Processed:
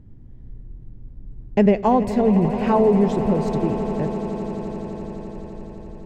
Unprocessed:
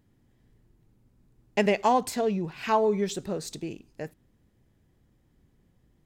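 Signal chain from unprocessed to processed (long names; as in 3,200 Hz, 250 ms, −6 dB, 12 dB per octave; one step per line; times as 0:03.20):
spectral tilt −4.5 dB per octave
in parallel at −1 dB: downward compressor, threshold −30 dBFS, peak gain reduction 16.5 dB
on the sum: echo that builds up and dies away 85 ms, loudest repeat 8, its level −16 dB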